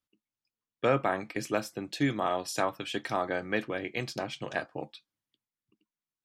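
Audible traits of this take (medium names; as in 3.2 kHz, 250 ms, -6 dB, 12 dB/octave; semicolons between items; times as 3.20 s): noise floor -95 dBFS; spectral tilt -4.5 dB/octave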